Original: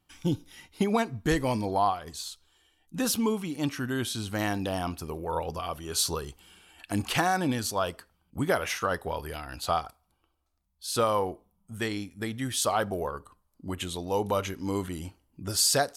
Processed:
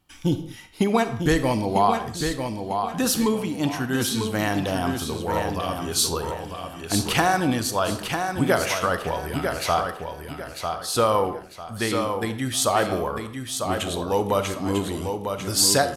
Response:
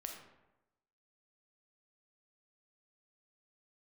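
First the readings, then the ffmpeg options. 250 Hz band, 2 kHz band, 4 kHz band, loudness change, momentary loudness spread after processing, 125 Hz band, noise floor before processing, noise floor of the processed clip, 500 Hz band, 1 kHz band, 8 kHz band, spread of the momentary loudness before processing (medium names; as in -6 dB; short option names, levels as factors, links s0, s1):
+6.0 dB, +6.0 dB, +6.0 dB, +5.5 dB, 9 LU, +6.0 dB, -73 dBFS, -39 dBFS, +6.5 dB, +6.0 dB, +5.5 dB, 14 LU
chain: -filter_complex "[0:a]aecho=1:1:948|1896|2844|3792:0.501|0.16|0.0513|0.0164,asplit=2[s0][s1];[1:a]atrim=start_sample=2205,afade=t=out:st=0.27:d=0.01,atrim=end_sample=12348[s2];[s1][s2]afir=irnorm=-1:irlink=0,volume=1.26[s3];[s0][s3]amix=inputs=2:normalize=0"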